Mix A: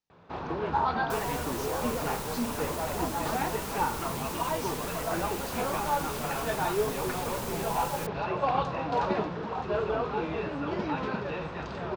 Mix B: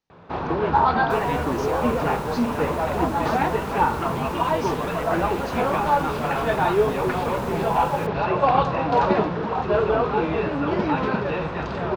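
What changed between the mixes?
speech +9.0 dB; first sound +9.0 dB; master: add treble shelf 4.6 kHz -8 dB

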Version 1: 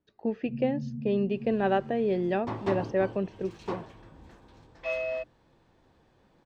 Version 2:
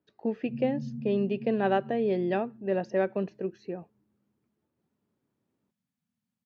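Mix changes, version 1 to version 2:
second sound: muted; master: add high-pass 110 Hz 12 dB/octave

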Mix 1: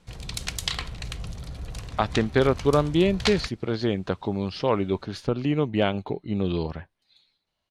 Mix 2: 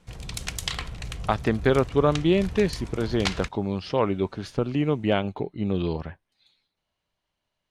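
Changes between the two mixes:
speech: entry -0.70 s; master: add peaking EQ 4.2 kHz -4 dB 0.55 oct

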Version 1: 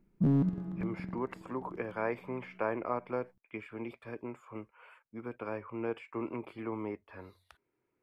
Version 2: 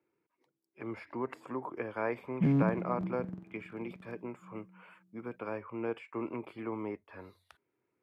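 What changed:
background: entry +2.20 s; master: add high-pass 88 Hz

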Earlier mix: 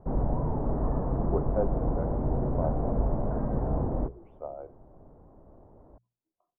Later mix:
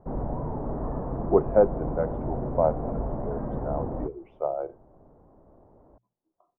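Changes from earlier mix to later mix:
speech +11.0 dB; master: add bass shelf 140 Hz -5.5 dB

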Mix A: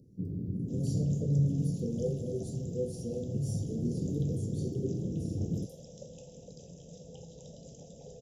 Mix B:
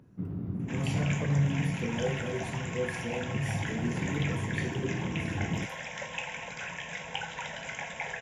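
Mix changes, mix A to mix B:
second sound: add treble shelf 5 kHz +11.5 dB; master: remove elliptic band-stop 490–4700 Hz, stop band 50 dB

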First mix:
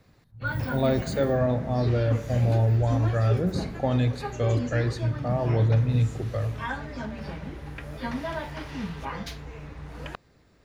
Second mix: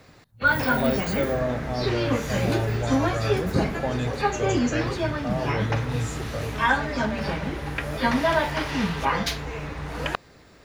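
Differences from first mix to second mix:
background +12.0 dB; master: add bass shelf 290 Hz -7 dB

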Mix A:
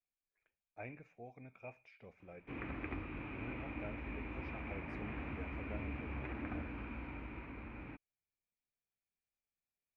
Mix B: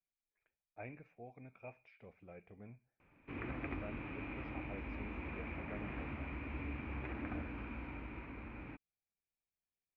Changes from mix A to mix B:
speech: add distance through air 160 m; background: entry +0.80 s

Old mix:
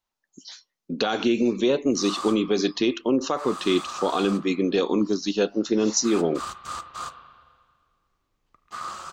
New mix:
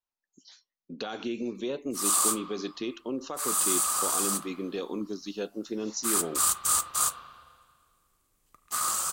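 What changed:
speech -11.5 dB; background: remove distance through air 200 m

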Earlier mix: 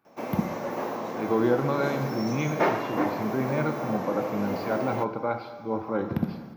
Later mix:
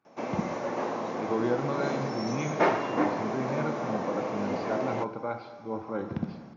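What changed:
speech -5.0 dB; master: add brick-wall FIR low-pass 7.2 kHz

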